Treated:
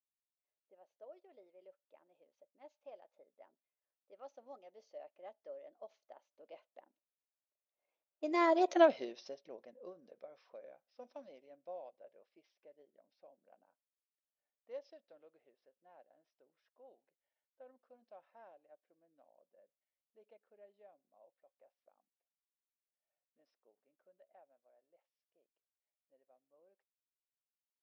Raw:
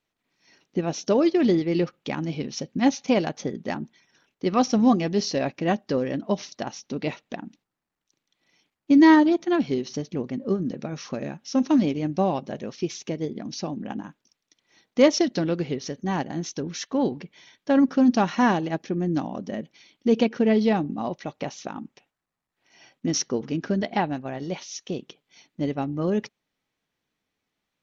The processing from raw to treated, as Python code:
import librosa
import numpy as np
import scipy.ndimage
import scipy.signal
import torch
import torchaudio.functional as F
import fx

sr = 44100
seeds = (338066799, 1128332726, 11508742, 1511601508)

y = fx.doppler_pass(x, sr, speed_mps=26, closest_m=2.1, pass_at_s=8.75)
y = fx.env_lowpass(y, sr, base_hz=2000.0, full_db=-43.5)
y = fx.highpass_res(y, sr, hz=580.0, q=5.4)
y = y * 10.0 ** (-1.5 / 20.0)